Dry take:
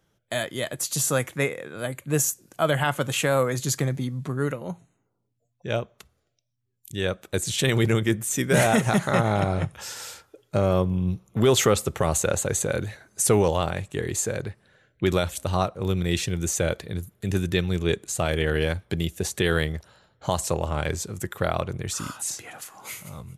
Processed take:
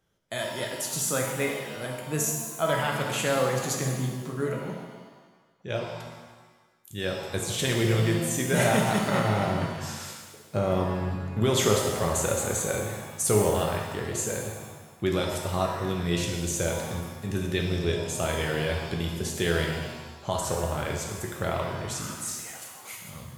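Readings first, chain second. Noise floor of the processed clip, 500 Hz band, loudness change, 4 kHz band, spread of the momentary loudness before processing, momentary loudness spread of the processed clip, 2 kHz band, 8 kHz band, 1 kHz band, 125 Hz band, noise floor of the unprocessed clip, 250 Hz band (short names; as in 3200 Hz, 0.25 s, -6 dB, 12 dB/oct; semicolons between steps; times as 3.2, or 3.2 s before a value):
-54 dBFS, -2.5 dB, -2.5 dB, -2.0 dB, 13 LU, 13 LU, -2.5 dB, -2.5 dB, -1.5 dB, -3.0 dB, -74 dBFS, -3.0 dB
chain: shimmer reverb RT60 1.3 s, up +7 st, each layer -8 dB, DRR 0.5 dB; gain -5.5 dB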